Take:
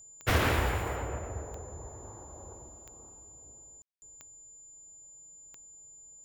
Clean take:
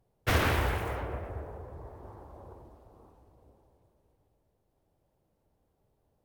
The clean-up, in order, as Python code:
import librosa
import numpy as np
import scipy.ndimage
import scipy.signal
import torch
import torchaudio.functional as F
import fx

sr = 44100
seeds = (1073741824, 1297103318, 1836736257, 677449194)

y = fx.fix_declick_ar(x, sr, threshold=10.0)
y = fx.notch(y, sr, hz=7100.0, q=30.0)
y = fx.fix_ambience(y, sr, seeds[0], print_start_s=4.95, print_end_s=5.45, start_s=3.82, end_s=4.02)
y = fx.fix_echo_inverse(y, sr, delay_ms=134, level_db=-11.5)